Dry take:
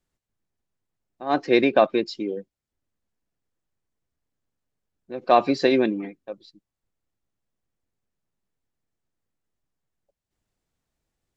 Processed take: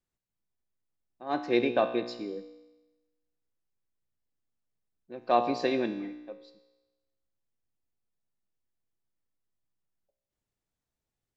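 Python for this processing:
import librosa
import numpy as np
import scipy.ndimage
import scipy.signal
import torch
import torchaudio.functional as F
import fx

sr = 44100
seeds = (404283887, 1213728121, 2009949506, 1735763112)

y = fx.comb_fb(x, sr, f0_hz=60.0, decay_s=1.1, harmonics='all', damping=0.0, mix_pct=70)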